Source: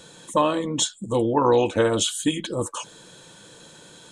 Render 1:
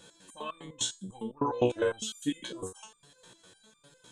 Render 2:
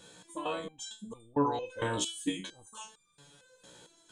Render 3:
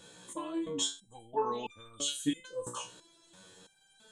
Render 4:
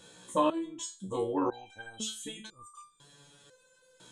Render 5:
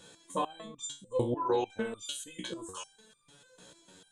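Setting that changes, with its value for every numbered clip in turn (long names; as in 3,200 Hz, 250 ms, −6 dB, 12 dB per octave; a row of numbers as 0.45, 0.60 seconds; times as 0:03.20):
step-sequenced resonator, speed: 9.9, 4.4, 3, 2, 6.7 Hertz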